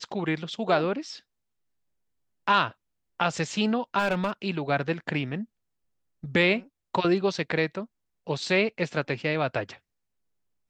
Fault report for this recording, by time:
3.98–4.31 s: clipped -19.5 dBFS

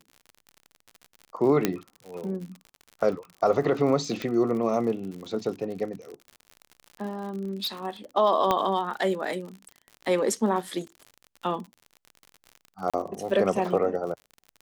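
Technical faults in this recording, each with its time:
crackle 63 per s -35 dBFS
1.65 s: pop -7 dBFS
4.22 s: pop -18 dBFS
7.12–7.68 s: clipped -26 dBFS
8.51 s: pop -10 dBFS
12.90–12.94 s: dropout 36 ms

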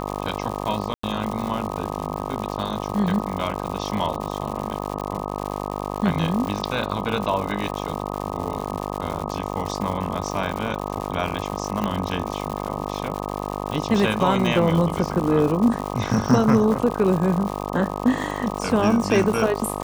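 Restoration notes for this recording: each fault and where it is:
buzz 50 Hz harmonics 25 -29 dBFS
crackle 180 per s -27 dBFS
0.94–1.03 s: dropout 94 ms
11.84 s: pop -11 dBFS

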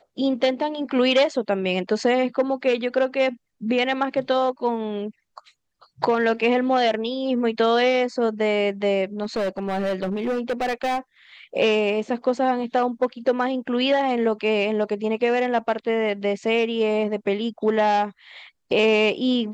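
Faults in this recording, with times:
9.23–10.99 s: clipped -20.5 dBFS

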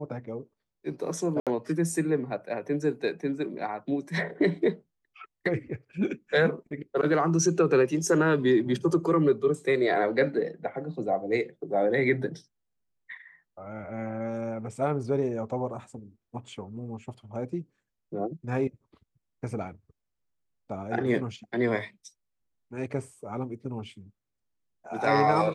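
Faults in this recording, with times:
1.40–1.47 s: dropout 67 ms

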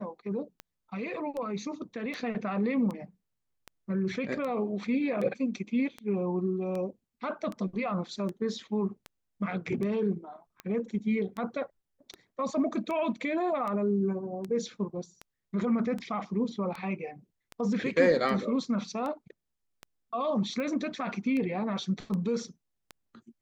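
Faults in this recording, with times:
tick 78 rpm -24 dBFS

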